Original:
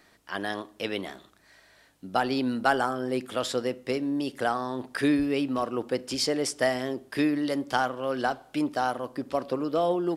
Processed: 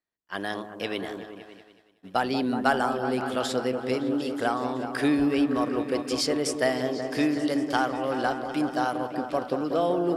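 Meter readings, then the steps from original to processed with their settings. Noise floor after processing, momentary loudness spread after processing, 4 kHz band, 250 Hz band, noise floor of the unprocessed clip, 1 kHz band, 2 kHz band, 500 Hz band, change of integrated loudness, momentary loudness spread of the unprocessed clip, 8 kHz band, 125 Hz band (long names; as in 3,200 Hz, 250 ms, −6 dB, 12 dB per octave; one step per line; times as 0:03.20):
−60 dBFS, 9 LU, +0.5 dB, +2.0 dB, −60 dBFS, +1.0 dB, +0.5 dB, +1.5 dB, +1.5 dB, 8 LU, 0.0 dB, +1.5 dB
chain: echo whose low-pass opens from repeat to repeat 187 ms, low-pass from 750 Hz, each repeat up 1 octave, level −6 dB
downward expander −35 dBFS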